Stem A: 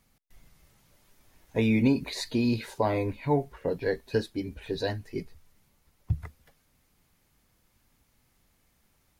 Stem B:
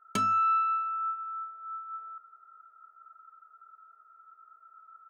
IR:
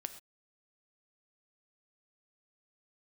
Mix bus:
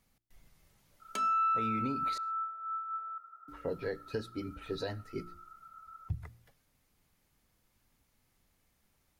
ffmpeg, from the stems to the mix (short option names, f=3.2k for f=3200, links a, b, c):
-filter_complex "[0:a]bandreject=f=58.36:t=h:w=4,bandreject=f=116.72:t=h:w=4,bandreject=f=175.08:t=h:w=4,bandreject=f=233.44:t=h:w=4,bandreject=f=291.8:t=h:w=4,bandreject=f=350.16:t=h:w=4,volume=-6.5dB,asplit=3[a][b][c];[a]atrim=end=2.18,asetpts=PTS-STARTPTS,afade=t=out:st=2.176:d=0.004:c=hsin[d];[b]atrim=start=2.18:end=3.48,asetpts=PTS-STARTPTS,volume=0[e];[c]atrim=start=3.48,asetpts=PTS-STARTPTS,afade=t=in:d=0.004:c=hsin[f];[d][e][f]concat=n=3:v=0:a=1,asplit=2[g][h];[h]volume=-12.5dB[i];[1:a]highpass=370,adelay=1000,volume=-0.5dB,asplit=2[j][k];[k]volume=-9dB[l];[2:a]atrim=start_sample=2205[m];[i][l]amix=inputs=2:normalize=0[n];[n][m]afir=irnorm=-1:irlink=0[o];[g][j][o]amix=inputs=3:normalize=0,alimiter=level_in=1dB:limit=-24dB:level=0:latency=1:release=251,volume=-1dB"